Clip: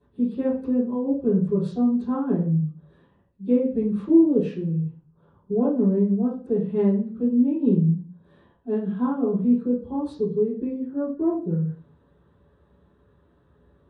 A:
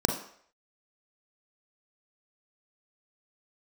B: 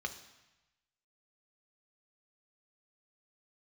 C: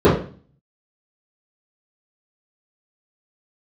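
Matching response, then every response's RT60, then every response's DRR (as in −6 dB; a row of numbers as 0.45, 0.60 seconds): C; 0.60, 1.0, 0.40 seconds; 3.0, 5.5, −13.5 decibels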